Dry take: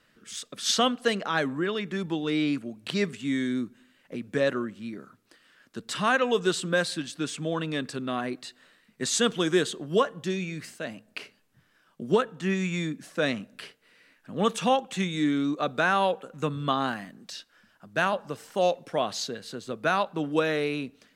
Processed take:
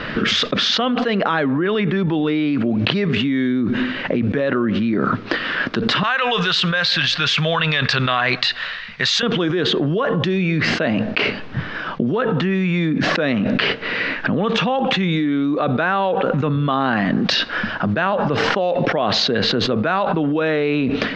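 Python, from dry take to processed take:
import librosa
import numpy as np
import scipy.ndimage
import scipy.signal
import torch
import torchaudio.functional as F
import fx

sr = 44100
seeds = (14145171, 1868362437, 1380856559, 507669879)

y = fx.tone_stack(x, sr, knobs='10-0-10', at=(6.03, 9.23))
y = scipy.signal.sosfilt(scipy.signal.bessel(8, 2700.0, 'lowpass', norm='mag', fs=sr, output='sos'), y)
y = fx.env_flatten(y, sr, amount_pct=100)
y = y * librosa.db_to_amplitude(-1.0)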